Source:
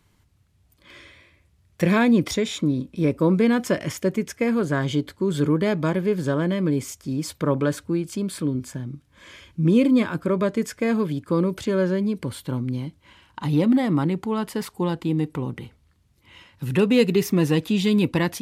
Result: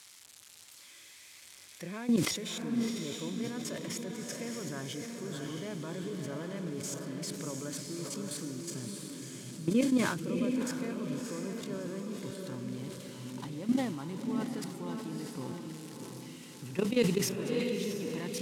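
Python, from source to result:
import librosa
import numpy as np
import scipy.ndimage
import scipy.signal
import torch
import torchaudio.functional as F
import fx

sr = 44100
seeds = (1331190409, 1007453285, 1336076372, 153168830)

y = x + 0.5 * 10.0 ** (-23.5 / 20.0) * np.diff(np.sign(x), prepend=np.sign(x[:1]))
y = scipy.signal.sosfilt(scipy.signal.butter(2, 8000.0, 'lowpass', fs=sr, output='sos'), y)
y = fx.level_steps(y, sr, step_db=16)
y = scipy.signal.sosfilt(scipy.signal.butter(2, 130.0, 'highpass', fs=sr, output='sos'), y)
y = fx.echo_diffused(y, sr, ms=654, feedback_pct=46, wet_db=-3.0)
y = fx.sustainer(y, sr, db_per_s=60.0)
y = y * 10.0 ** (-7.5 / 20.0)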